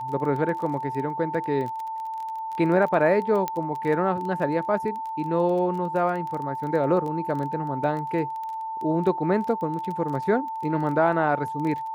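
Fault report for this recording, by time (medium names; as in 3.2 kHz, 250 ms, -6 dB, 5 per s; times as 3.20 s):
crackle 18 per s -31 dBFS
whine 890 Hz -29 dBFS
3.48 s: pop -13 dBFS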